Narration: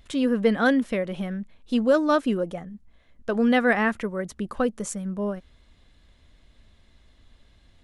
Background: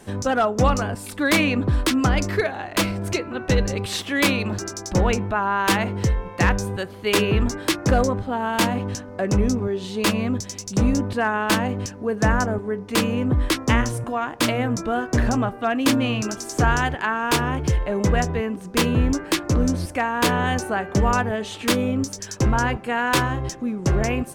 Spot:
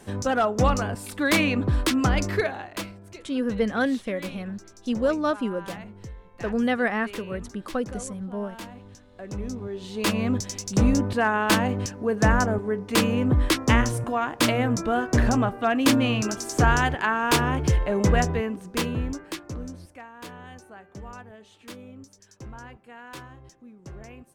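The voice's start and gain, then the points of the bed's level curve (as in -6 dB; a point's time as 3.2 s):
3.15 s, -3.5 dB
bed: 2.52 s -2.5 dB
3.02 s -19.5 dB
8.94 s -19.5 dB
10.3 s -0.5 dB
18.27 s -0.5 dB
20.13 s -21.5 dB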